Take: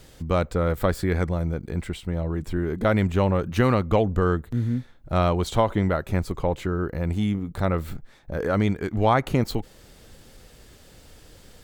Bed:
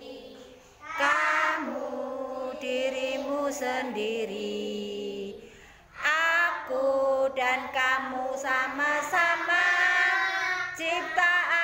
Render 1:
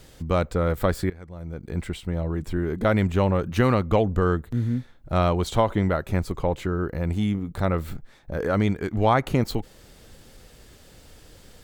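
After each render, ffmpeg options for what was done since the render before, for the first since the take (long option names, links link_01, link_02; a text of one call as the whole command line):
ffmpeg -i in.wav -filter_complex "[0:a]asplit=2[link_01][link_02];[link_01]atrim=end=1.1,asetpts=PTS-STARTPTS,afade=type=out:start_time=1.096:duration=0.004:curve=hsin:silence=0.0944061[link_03];[link_02]atrim=start=1.1,asetpts=PTS-STARTPTS,afade=type=in:duration=0.68:curve=qua:silence=0.0944061[link_04];[link_03][link_04]concat=n=2:v=0:a=1" out.wav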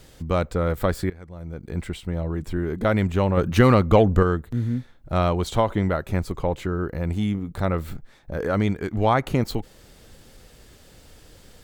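ffmpeg -i in.wav -filter_complex "[0:a]asettb=1/sr,asplit=3[link_01][link_02][link_03];[link_01]atrim=end=3.374[link_04];[link_02]atrim=start=3.37:end=4.23,asetpts=PTS-STARTPTS,afade=type=in:duration=0.004:curve=qsin,afade=type=out:start_time=0.856:duration=0.004:curve=qsin,acontrast=36[link_05];[link_03]atrim=start=4.226[link_06];[link_04][link_05]acrossfade=duration=0.004:curve1=hsin:curve2=qsin[link_07];[link_07][link_06]acrossfade=duration=0.004:curve1=qsin:curve2=hsin" out.wav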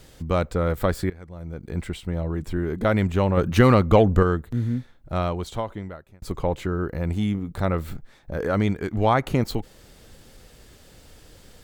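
ffmpeg -i in.wav -filter_complex "[0:a]asplit=2[link_01][link_02];[link_01]atrim=end=6.22,asetpts=PTS-STARTPTS,afade=type=out:start_time=4.7:duration=1.52[link_03];[link_02]atrim=start=6.22,asetpts=PTS-STARTPTS,afade=type=in:duration=0.004:curve=hsin[link_04];[link_03][link_04]concat=n=2:v=0:a=1" out.wav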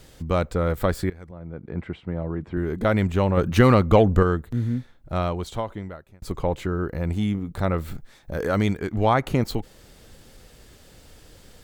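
ffmpeg -i in.wav -filter_complex "[0:a]asettb=1/sr,asplit=3[link_01][link_02][link_03];[link_01]atrim=end=1.314[link_04];[link_02]atrim=start=1.31:end=2.57,asetpts=PTS-STARTPTS,afade=type=in:duration=0.004:curve=qsin,afade=type=out:start_time=1.256:duration=0.004:curve=qsin,highpass=100,lowpass=2000[link_05];[link_03]atrim=start=2.566[link_06];[link_04][link_05]acrossfade=duration=0.004:curve1=hsin:curve2=qsin[link_07];[link_07][link_06]acrossfade=duration=0.004:curve1=qsin:curve2=hsin,asettb=1/sr,asplit=3[link_08][link_09][link_10];[link_08]atrim=end=7.944[link_11];[link_09]atrim=start=7.94:end=8.78,asetpts=PTS-STARTPTS,afade=type=in:duration=0.004:curve=qsin,afade=type=out:start_time=0.836:duration=0.004:curve=qsin,highshelf=frequency=3900:gain=7.5[link_12];[link_10]atrim=start=8.776[link_13];[link_11][link_12]acrossfade=duration=0.004:curve1=hsin:curve2=qsin[link_14];[link_14][link_13]acrossfade=duration=0.004:curve1=qsin:curve2=hsin" out.wav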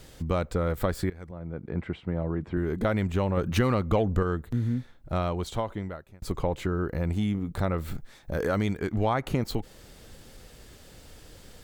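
ffmpeg -i in.wav -af "acompressor=threshold=-24dB:ratio=2.5" out.wav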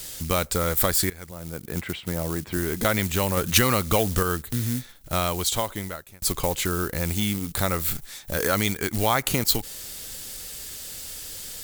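ffmpeg -i in.wav -af "acrusher=bits=7:mode=log:mix=0:aa=0.000001,crystalizer=i=9:c=0" out.wav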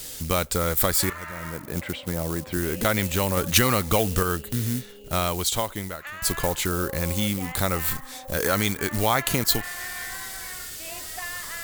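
ffmpeg -i in.wav -i bed.wav -filter_complex "[1:a]volume=-13dB[link_01];[0:a][link_01]amix=inputs=2:normalize=0" out.wav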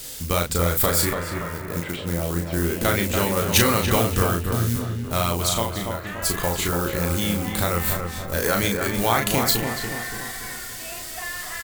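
ffmpeg -i in.wav -filter_complex "[0:a]asplit=2[link_01][link_02];[link_02]adelay=35,volume=-4dB[link_03];[link_01][link_03]amix=inputs=2:normalize=0,asplit=2[link_04][link_05];[link_05]adelay=286,lowpass=frequency=2100:poles=1,volume=-5dB,asplit=2[link_06][link_07];[link_07]adelay=286,lowpass=frequency=2100:poles=1,volume=0.51,asplit=2[link_08][link_09];[link_09]adelay=286,lowpass=frequency=2100:poles=1,volume=0.51,asplit=2[link_10][link_11];[link_11]adelay=286,lowpass=frequency=2100:poles=1,volume=0.51,asplit=2[link_12][link_13];[link_13]adelay=286,lowpass=frequency=2100:poles=1,volume=0.51,asplit=2[link_14][link_15];[link_15]adelay=286,lowpass=frequency=2100:poles=1,volume=0.51[link_16];[link_04][link_06][link_08][link_10][link_12][link_14][link_16]amix=inputs=7:normalize=0" out.wav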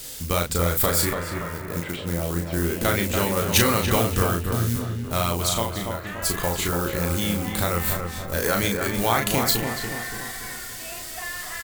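ffmpeg -i in.wav -af "volume=-1dB" out.wav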